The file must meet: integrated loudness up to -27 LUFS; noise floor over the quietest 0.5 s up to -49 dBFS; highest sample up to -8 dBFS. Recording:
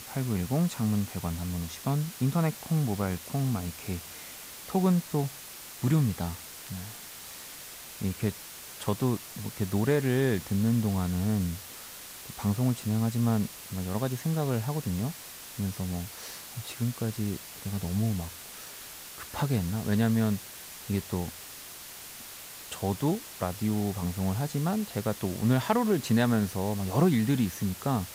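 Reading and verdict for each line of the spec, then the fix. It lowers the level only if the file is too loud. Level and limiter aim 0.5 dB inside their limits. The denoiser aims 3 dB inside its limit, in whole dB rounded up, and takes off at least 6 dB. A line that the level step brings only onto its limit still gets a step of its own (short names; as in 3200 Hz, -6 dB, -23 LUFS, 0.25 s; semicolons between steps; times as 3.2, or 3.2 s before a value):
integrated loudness -30.0 LUFS: OK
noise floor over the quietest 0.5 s -45 dBFS: fail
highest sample -12.0 dBFS: OK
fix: denoiser 7 dB, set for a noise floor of -45 dBFS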